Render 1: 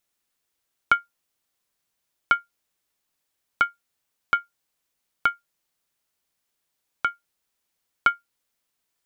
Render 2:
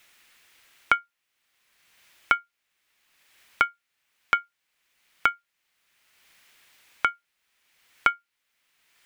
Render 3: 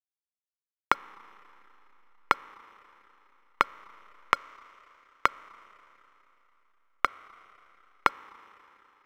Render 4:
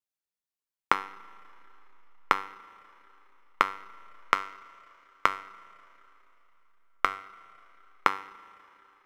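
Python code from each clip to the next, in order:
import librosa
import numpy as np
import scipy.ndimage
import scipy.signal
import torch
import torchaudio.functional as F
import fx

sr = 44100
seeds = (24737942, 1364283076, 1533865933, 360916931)

y1 = fx.peak_eq(x, sr, hz=2200.0, db=13.0, octaves=1.8)
y1 = fx.band_squash(y1, sr, depth_pct=70)
y1 = y1 * librosa.db_to_amplitude(-6.5)
y2 = fx.env_lowpass_down(y1, sr, base_hz=770.0, full_db=-25.5)
y2 = fx.backlash(y2, sr, play_db=-26.5)
y2 = fx.rev_schroeder(y2, sr, rt60_s=3.4, comb_ms=28, drr_db=19.5)
y2 = y2 * librosa.db_to_amplitude(2.5)
y3 = fx.comb_fb(y2, sr, f0_hz=97.0, decay_s=0.49, harmonics='all', damping=0.0, mix_pct=70)
y3 = y3 * librosa.db_to_amplitude(8.0)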